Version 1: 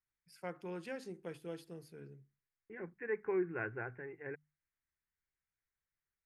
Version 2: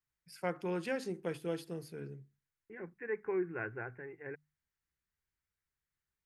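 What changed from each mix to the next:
first voice +7.5 dB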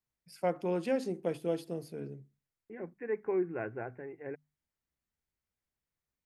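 master: add graphic EQ with 15 bands 250 Hz +7 dB, 630 Hz +9 dB, 1,600 Hz −5 dB

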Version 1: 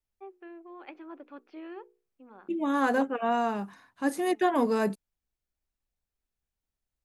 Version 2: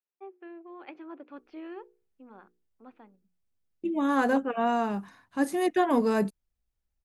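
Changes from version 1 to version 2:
second voice: entry +1.35 s
master: add low-shelf EQ 150 Hz +8 dB

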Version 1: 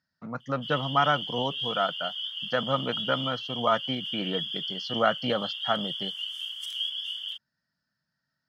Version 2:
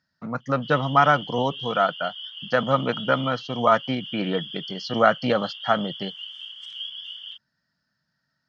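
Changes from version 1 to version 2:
speech +6.0 dB
background: add high-frequency loss of the air 150 metres

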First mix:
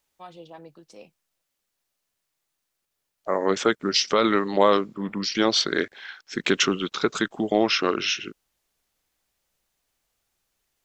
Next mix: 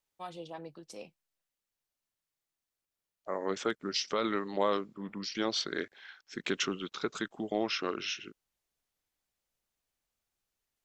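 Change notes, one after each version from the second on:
first voice: remove high-frequency loss of the air 53 metres
second voice −11.0 dB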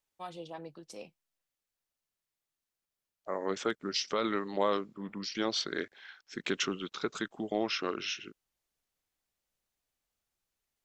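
nothing changed

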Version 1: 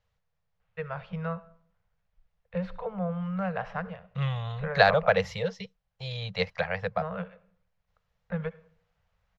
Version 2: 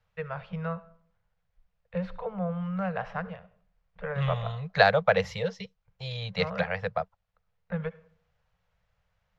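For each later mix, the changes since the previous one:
first voice: entry −0.60 s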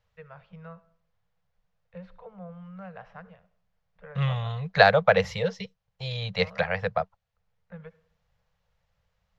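first voice −11.5 dB
second voice +3.0 dB

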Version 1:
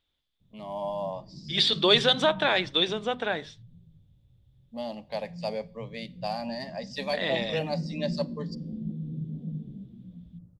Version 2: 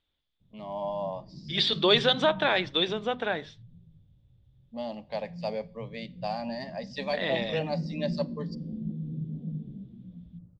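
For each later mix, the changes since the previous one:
master: add high-frequency loss of the air 96 metres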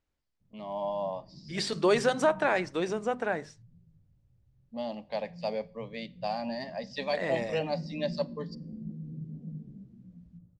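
second voice: remove low-pass with resonance 3,500 Hz, resonance Q 11
background −5.5 dB

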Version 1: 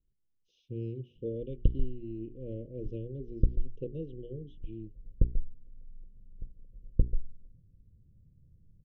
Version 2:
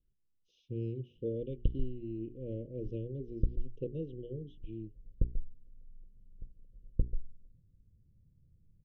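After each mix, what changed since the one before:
background −5.0 dB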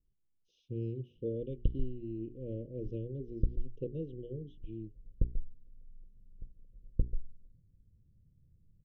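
master: add parametric band 1,900 Hz −4 dB 1.8 octaves

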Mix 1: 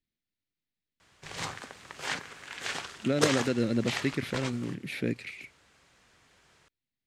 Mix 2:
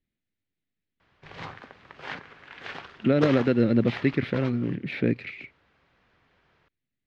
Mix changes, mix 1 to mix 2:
speech +7.0 dB
master: add high-frequency loss of the air 300 metres

